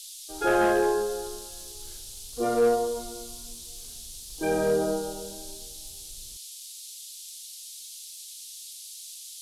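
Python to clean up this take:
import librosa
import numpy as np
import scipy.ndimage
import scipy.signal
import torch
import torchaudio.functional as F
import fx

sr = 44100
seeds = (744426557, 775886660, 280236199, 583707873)

y = fx.fix_declip(x, sr, threshold_db=-16.5)
y = fx.noise_reduce(y, sr, print_start_s=8.05, print_end_s=8.55, reduce_db=29.0)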